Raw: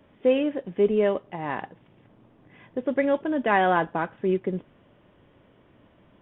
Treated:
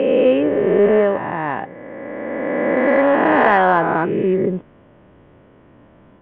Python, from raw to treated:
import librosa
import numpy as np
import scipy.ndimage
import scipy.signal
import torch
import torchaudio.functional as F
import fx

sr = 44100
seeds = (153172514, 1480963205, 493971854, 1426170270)

p1 = fx.spec_swells(x, sr, rise_s=2.9)
p2 = scipy.signal.sosfilt(scipy.signal.butter(2, 2100.0, 'lowpass', fs=sr, output='sos'), p1)
p3 = 10.0 ** (-15.0 / 20.0) * np.tanh(p2 / 10.0 ** (-15.0 / 20.0))
p4 = p2 + F.gain(torch.from_numpy(p3), -12.0).numpy()
y = F.gain(torch.from_numpy(p4), 3.5).numpy()